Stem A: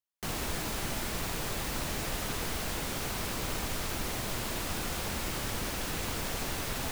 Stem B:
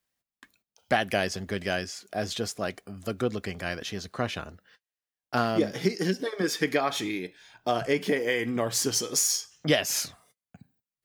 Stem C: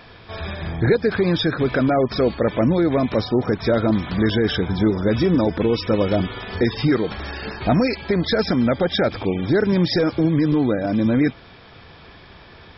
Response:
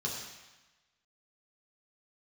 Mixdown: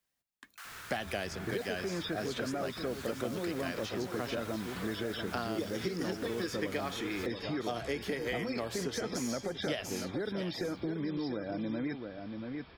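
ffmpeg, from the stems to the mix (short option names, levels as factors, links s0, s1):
-filter_complex "[0:a]highpass=f=1400:t=q:w=3.3,adelay=350,volume=0.224[s0];[1:a]volume=0.794,asplit=2[s1][s2];[s2]volume=0.141[s3];[2:a]adelay=650,volume=0.251,asplit=2[s4][s5];[s5]volume=0.335[s6];[s3][s6]amix=inputs=2:normalize=0,aecho=0:1:684:1[s7];[s0][s1][s4][s7]amix=inputs=4:normalize=0,acrossover=split=220|3400[s8][s9][s10];[s8]acompressor=threshold=0.00501:ratio=4[s11];[s9]acompressor=threshold=0.02:ratio=4[s12];[s10]acompressor=threshold=0.00447:ratio=4[s13];[s11][s12][s13]amix=inputs=3:normalize=0"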